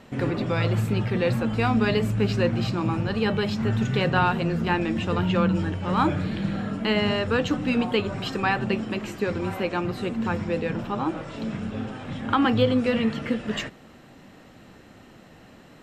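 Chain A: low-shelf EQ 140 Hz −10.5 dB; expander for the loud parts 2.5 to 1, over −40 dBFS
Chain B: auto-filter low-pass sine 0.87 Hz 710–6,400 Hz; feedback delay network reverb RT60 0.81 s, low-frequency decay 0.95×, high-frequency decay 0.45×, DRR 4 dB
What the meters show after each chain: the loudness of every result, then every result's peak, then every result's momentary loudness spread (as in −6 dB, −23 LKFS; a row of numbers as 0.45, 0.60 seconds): −34.5, −22.0 LKFS; −10.5, −5.5 dBFS; 15, 9 LU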